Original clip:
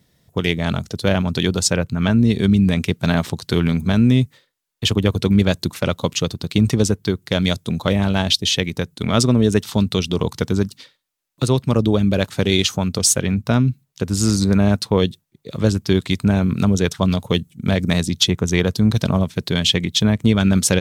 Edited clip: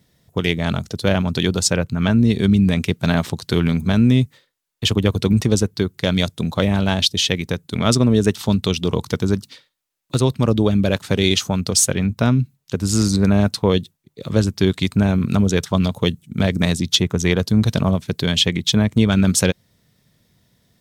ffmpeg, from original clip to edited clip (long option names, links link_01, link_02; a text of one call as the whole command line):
ffmpeg -i in.wav -filter_complex "[0:a]asplit=2[link_01][link_02];[link_01]atrim=end=5.332[link_03];[link_02]atrim=start=6.608[link_04];[link_03][link_04]acrossfade=duration=0.004:curve1=hsin:curve2=hsin" out.wav